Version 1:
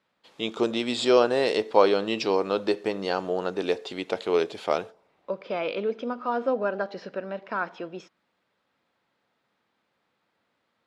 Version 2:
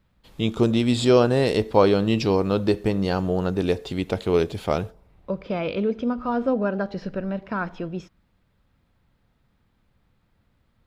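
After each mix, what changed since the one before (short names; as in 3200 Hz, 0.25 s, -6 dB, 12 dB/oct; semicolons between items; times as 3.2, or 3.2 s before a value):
master: remove BPF 400–7300 Hz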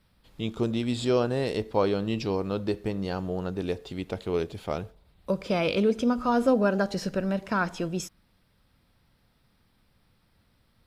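first voice -7.5 dB; second voice: remove air absorption 260 m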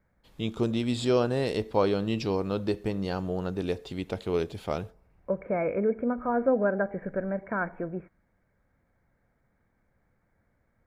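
second voice: add rippled Chebyshev low-pass 2300 Hz, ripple 6 dB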